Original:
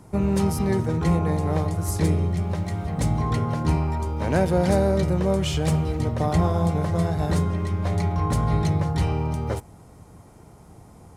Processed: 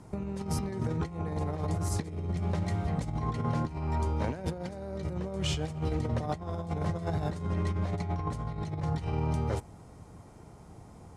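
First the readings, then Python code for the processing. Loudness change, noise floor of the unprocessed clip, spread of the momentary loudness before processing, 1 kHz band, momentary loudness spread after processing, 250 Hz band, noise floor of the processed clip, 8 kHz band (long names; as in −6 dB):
−9.5 dB, −48 dBFS, 5 LU, −8.5 dB, 20 LU, −10.0 dB, −51 dBFS, −8.5 dB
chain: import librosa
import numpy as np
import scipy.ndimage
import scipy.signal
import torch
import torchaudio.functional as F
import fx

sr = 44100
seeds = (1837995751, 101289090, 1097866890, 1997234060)

y = fx.over_compress(x, sr, threshold_db=-25.0, ratio=-0.5)
y = scipy.signal.sosfilt(scipy.signal.butter(2, 8700.0, 'lowpass', fs=sr, output='sos'), y)
y = y * librosa.db_to_amplitude(-6.0)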